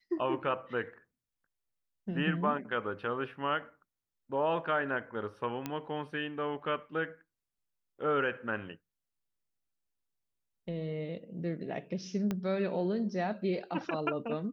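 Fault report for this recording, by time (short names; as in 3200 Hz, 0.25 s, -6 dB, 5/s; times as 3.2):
5.66 pop -20 dBFS
12.31 pop -20 dBFS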